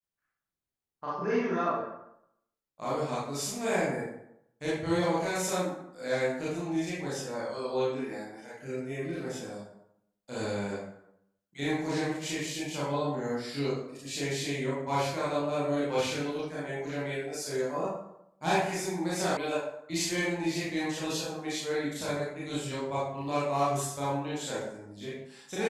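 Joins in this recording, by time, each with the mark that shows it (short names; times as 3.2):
19.37 sound cut off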